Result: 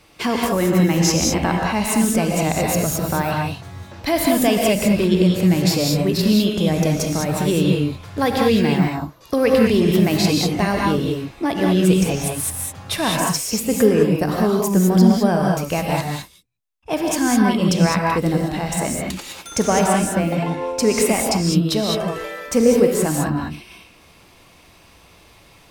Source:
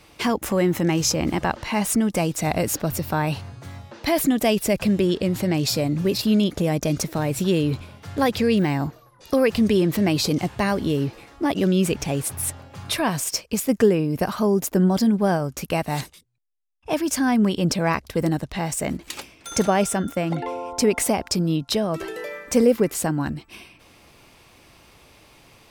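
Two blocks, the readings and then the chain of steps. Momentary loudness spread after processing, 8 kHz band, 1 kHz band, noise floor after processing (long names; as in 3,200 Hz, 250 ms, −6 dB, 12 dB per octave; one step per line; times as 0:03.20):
9 LU, +4.0 dB, +4.5 dB, −50 dBFS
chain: in parallel at −12 dB: dead-zone distortion −32 dBFS
on the sum: reverb whose tail is shaped and stops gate 230 ms rising, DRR −1 dB
level −1 dB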